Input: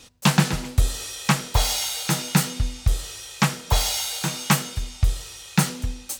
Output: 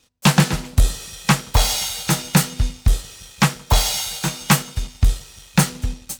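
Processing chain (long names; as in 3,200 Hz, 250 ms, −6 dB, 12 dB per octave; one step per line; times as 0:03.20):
on a send: feedback echo with a low-pass in the loop 172 ms, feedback 77%, low-pass 840 Hz, level −23 dB
on the sum: leveller curve on the samples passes 2
expander for the loud parts 1.5 to 1, over −27 dBFS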